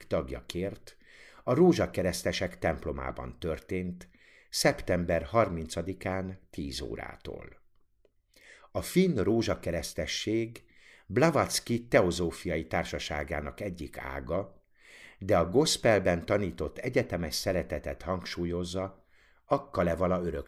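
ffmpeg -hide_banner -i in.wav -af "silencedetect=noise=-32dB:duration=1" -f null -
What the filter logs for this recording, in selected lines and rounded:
silence_start: 7.35
silence_end: 8.75 | silence_duration: 1.41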